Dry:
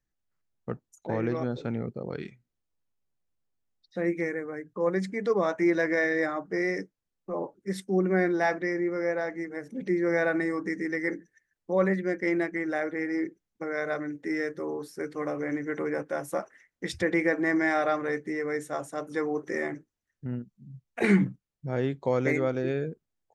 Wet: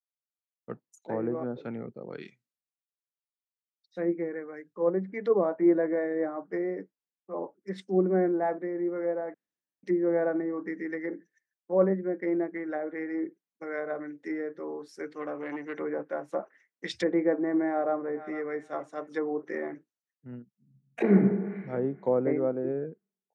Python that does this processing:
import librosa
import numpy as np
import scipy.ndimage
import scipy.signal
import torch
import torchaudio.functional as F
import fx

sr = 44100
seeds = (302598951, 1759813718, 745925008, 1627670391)

y = fx.transformer_sat(x, sr, knee_hz=670.0, at=(15.09, 15.78))
y = fx.echo_throw(y, sr, start_s=17.69, length_s=0.67, ms=460, feedback_pct=15, wet_db=-14.5)
y = fx.reverb_throw(y, sr, start_s=20.55, length_s=0.62, rt60_s=2.0, drr_db=2.0)
y = fx.edit(y, sr, fx.room_tone_fill(start_s=9.34, length_s=0.49), tone=tone)
y = scipy.signal.sosfilt(scipy.signal.butter(2, 210.0, 'highpass', fs=sr, output='sos'), y)
y = fx.env_lowpass_down(y, sr, base_hz=790.0, full_db=-25.0)
y = fx.band_widen(y, sr, depth_pct=70)